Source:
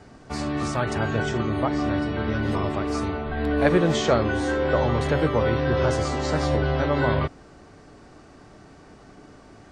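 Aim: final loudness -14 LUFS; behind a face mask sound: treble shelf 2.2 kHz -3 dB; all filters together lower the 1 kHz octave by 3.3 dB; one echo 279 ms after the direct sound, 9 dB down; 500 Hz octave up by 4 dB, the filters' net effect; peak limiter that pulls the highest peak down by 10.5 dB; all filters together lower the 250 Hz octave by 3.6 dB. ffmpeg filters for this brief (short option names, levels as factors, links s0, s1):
-af "equalizer=f=250:t=o:g=-8,equalizer=f=500:t=o:g=8.5,equalizer=f=1000:t=o:g=-7,alimiter=limit=0.168:level=0:latency=1,highshelf=f=2200:g=-3,aecho=1:1:279:0.355,volume=3.76"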